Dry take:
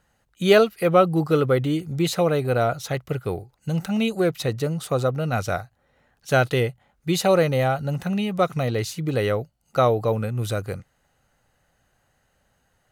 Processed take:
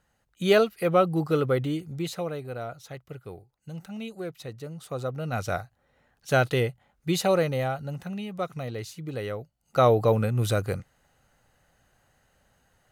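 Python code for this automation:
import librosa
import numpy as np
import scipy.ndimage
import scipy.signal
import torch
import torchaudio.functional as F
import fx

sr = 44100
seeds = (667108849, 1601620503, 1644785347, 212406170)

y = fx.gain(x, sr, db=fx.line((1.62, -4.5), (2.53, -14.0), (4.63, -14.0), (5.57, -3.0), (7.1, -3.0), (8.16, -10.0), (9.38, -10.0), (9.93, 1.0)))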